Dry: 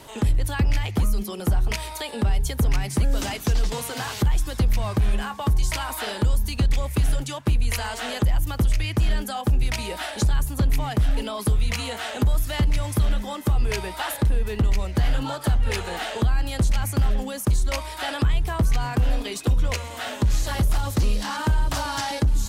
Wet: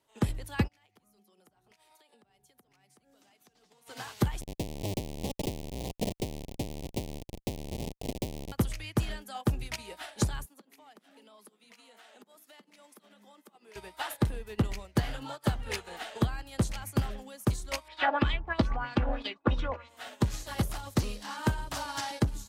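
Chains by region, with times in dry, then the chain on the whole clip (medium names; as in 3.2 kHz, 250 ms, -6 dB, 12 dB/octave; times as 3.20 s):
0.67–3.86 s: Chebyshev high-pass 180 Hz + compression 16:1, threshold -34 dBFS + whistle 740 Hz -49 dBFS
4.41–8.52 s: one-bit delta coder 32 kbps, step -38 dBFS + Schmitt trigger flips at -24.5 dBFS + Butterworth band-stop 1.4 kHz, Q 0.81
10.46–13.76 s: elliptic high-pass 200 Hz, stop band 50 dB + compression 8:1, threshold -31 dBFS
17.88–19.89 s: comb 3.5 ms, depth 41% + LFO low-pass sine 3.1 Hz 860–4400 Hz
whole clip: bass shelf 110 Hz -11.5 dB; upward expansion 2.5:1, over -42 dBFS; trim +1.5 dB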